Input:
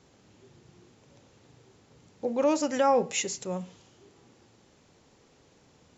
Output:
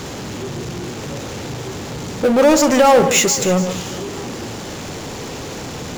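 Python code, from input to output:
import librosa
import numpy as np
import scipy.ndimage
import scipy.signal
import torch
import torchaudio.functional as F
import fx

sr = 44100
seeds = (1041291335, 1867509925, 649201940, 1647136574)

y = fx.power_curve(x, sr, exponent=0.5)
y = fx.echo_alternate(y, sr, ms=146, hz=1800.0, feedback_pct=59, wet_db=-10.0)
y = fx.end_taper(y, sr, db_per_s=110.0)
y = F.gain(torch.from_numpy(y), 8.5).numpy()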